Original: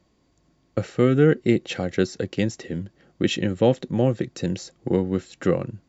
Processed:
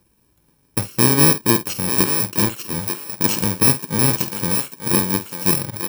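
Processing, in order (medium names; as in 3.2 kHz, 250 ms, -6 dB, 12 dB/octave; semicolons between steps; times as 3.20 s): bit-reversed sample order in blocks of 64 samples; doubling 49 ms -12.5 dB; thinning echo 894 ms, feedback 18%, high-pass 390 Hz, level -6 dB; trim +3 dB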